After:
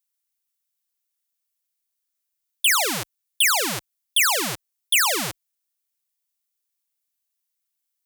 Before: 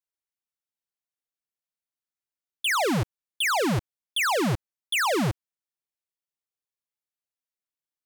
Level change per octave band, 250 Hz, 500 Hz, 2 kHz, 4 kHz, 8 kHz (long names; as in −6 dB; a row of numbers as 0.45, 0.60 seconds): −8.0, −4.0, +4.0, +7.0, +12.0 decibels